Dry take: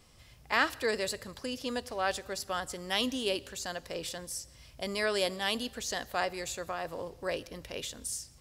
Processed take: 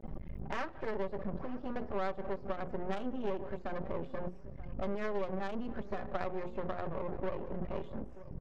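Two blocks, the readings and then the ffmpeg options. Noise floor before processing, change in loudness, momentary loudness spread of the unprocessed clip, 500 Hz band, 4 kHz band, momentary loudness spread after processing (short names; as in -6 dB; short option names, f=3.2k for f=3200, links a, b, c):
-56 dBFS, -6.0 dB, 10 LU, -3.0 dB, -22.0 dB, 6 LU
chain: -filter_complex "[0:a]aeval=exprs='val(0)+0.5*0.0251*sgn(val(0))':c=same,afftdn=nr=16:nf=-37,lowpass=f=3k:p=1,highshelf=f=2.3k:g=-7.5,bandreject=f=60:t=h:w=6,bandreject=f=120:t=h:w=6,bandreject=f=180:t=h:w=6,bandreject=f=240:t=h:w=6,bandreject=f=300:t=h:w=6,bandreject=f=360:t=h:w=6,bandreject=f=420:t=h:w=6,bandreject=f=480:t=h:w=6,bandreject=f=540:t=h:w=6,aecho=1:1:5.2:0.79,acompressor=threshold=-32dB:ratio=4,aeval=exprs='max(val(0),0)':c=same,adynamicsmooth=sensitivity=2.5:basefreq=910,asplit=2[a][b];[b]adelay=932.9,volume=-16dB,highshelf=f=4k:g=-21[c];[a][c]amix=inputs=2:normalize=0,volume=3dB"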